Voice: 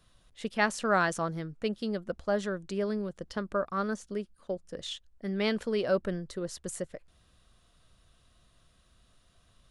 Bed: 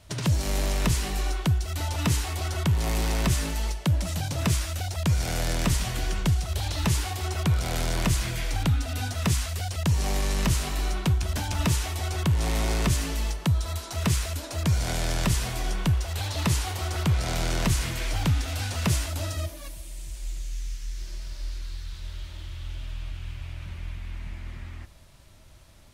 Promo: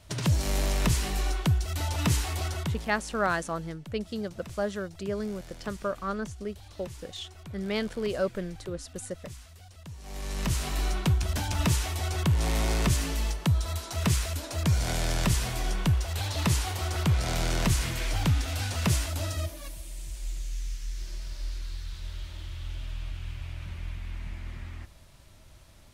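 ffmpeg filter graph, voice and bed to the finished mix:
ffmpeg -i stem1.wav -i stem2.wav -filter_complex "[0:a]adelay=2300,volume=-1dB[link_01];[1:a]volume=18dB,afade=type=out:start_time=2.41:duration=0.49:silence=0.112202,afade=type=in:start_time=10.02:duration=0.76:silence=0.112202[link_02];[link_01][link_02]amix=inputs=2:normalize=0" out.wav

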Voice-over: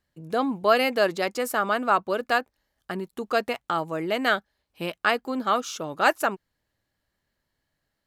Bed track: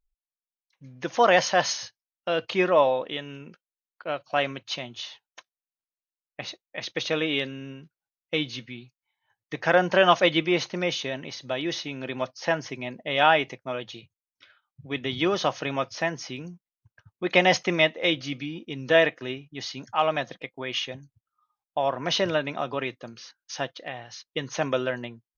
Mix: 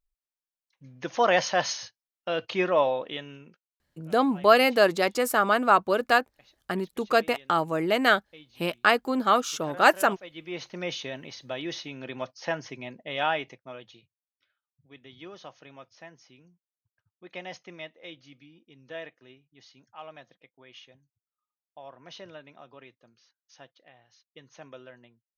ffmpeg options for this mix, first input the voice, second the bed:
ffmpeg -i stem1.wav -i stem2.wav -filter_complex "[0:a]adelay=3800,volume=2dB[link_01];[1:a]volume=15.5dB,afade=type=out:start_time=3.2:duration=0.6:silence=0.0944061,afade=type=in:start_time=10.32:duration=0.61:silence=0.11885,afade=type=out:start_time=12.8:duration=1.65:silence=0.177828[link_02];[link_01][link_02]amix=inputs=2:normalize=0" out.wav

